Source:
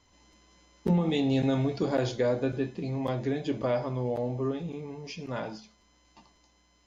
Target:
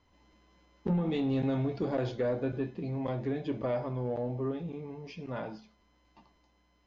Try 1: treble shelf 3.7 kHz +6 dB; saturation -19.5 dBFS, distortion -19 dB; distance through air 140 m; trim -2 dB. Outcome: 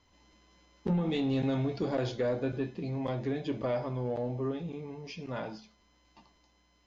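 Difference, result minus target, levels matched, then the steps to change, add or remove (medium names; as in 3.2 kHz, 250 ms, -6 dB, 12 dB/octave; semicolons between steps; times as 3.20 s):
8 kHz band +7.5 dB
change: treble shelf 3.7 kHz -4.5 dB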